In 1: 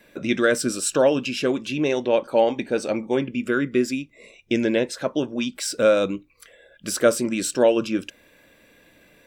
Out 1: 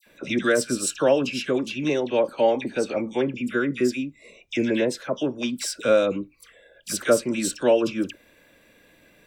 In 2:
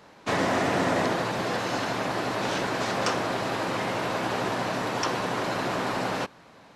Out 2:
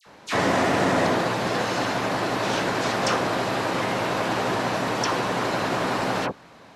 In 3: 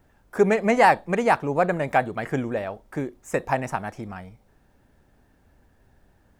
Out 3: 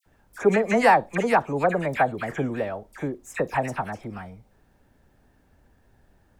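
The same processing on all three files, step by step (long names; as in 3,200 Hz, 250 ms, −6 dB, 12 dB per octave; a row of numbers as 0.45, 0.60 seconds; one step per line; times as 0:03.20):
all-pass dispersion lows, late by 62 ms, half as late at 1,700 Hz
loudness normalisation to −24 LKFS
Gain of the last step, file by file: −1.5, +3.5, −0.5 decibels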